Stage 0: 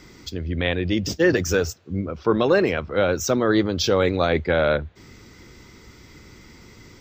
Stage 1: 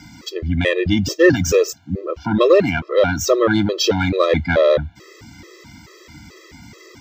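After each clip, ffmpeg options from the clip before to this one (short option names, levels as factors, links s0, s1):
-af "acontrast=73,highpass=72,afftfilt=real='re*gt(sin(2*PI*2.3*pts/sr)*(1-2*mod(floor(b*sr/1024/340),2)),0)':imag='im*gt(sin(2*PI*2.3*pts/sr)*(1-2*mod(floor(b*sr/1024/340),2)),0)':win_size=1024:overlap=0.75,volume=1.19"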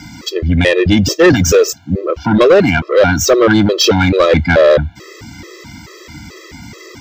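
-af "asoftclip=type=tanh:threshold=0.282,volume=2.66"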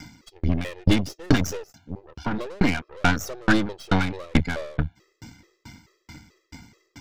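-af "aeval=exprs='0.75*(cos(1*acos(clip(val(0)/0.75,-1,1)))-cos(1*PI/2))+0.188*(cos(2*acos(clip(val(0)/0.75,-1,1)))-cos(2*PI/2))+0.106*(cos(6*acos(clip(val(0)/0.75,-1,1)))-cos(6*PI/2))+0.0237*(cos(7*acos(clip(val(0)/0.75,-1,1)))-cos(7*PI/2))':c=same,aeval=exprs='val(0)*pow(10,-35*if(lt(mod(2.3*n/s,1),2*abs(2.3)/1000),1-mod(2.3*n/s,1)/(2*abs(2.3)/1000),(mod(2.3*n/s,1)-2*abs(2.3)/1000)/(1-2*abs(2.3)/1000))/20)':c=same,volume=0.596"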